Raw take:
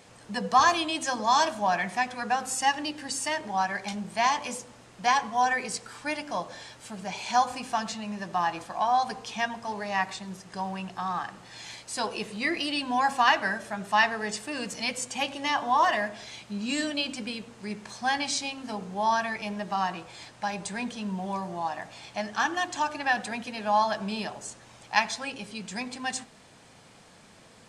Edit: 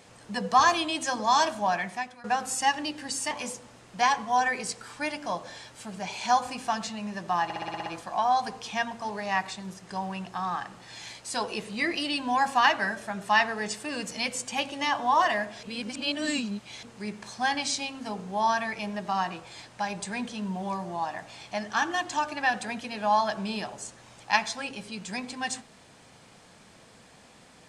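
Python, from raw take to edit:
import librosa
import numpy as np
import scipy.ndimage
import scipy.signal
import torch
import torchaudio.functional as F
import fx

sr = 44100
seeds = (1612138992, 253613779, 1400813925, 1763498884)

y = fx.edit(x, sr, fx.fade_out_to(start_s=1.47, length_s=0.77, curve='qsin', floor_db=-20.0),
    fx.cut(start_s=3.31, length_s=1.05),
    fx.stutter(start_s=8.49, slice_s=0.06, count=8),
    fx.reverse_span(start_s=16.26, length_s=1.2), tone=tone)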